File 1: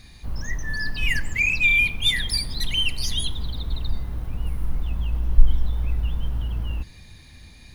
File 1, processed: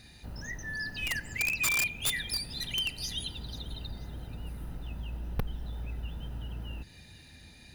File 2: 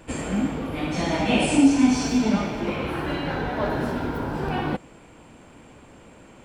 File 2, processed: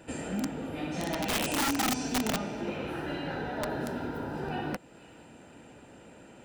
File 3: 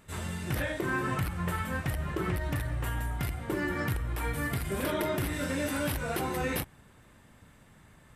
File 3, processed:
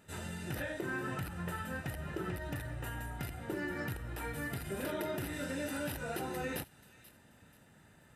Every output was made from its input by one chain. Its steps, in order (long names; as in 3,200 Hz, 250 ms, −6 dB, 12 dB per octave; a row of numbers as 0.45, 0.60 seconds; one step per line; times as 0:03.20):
notch comb filter 1,100 Hz
delay with a high-pass on its return 484 ms, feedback 32%, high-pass 2,400 Hz, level −19 dB
in parallel at +1 dB: downward compressor 8 to 1, threshold −37 dBFS
on the sum: wrap-around overflow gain 14 dB
level −9 dB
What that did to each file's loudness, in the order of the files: −9.5, −8.5, −7.0 LU